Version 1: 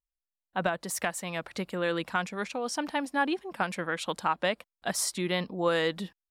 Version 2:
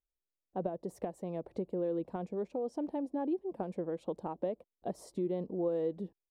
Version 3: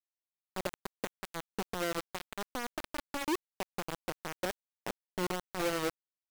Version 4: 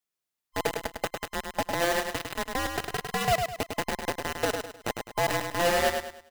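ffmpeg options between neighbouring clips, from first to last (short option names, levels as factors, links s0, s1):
-af "firequalizer=gain_entry='entry(230,0);entry(380,7);entry(1400,-24)':delay=0.05:min_phase=1,acompressor=threshold=0.0158:ratio=2"
-af "acrusher=bits=4:mix=0:aa=0.000001,volume=0.794"
-filter_complex "[0:a]afftfilt=real='real(if(between(b,1,1008),(2*floor((b-1)/48)+1)*48-b,b),0)':imag='imag(if(between(b,1,1008),(2*floor((b-1)/48)+1)*48-b,b),0)*if(between(b,1,1008),-1,1)':win_size=2048:overlap=0.75,asplit=2[s0][s1];[s1]aecho=0:1:103|206|309|412:0.531|0.186|0.065|0.0228[s2];[s0][s2]amix=inputs=2:normalize=0,volume=2.37"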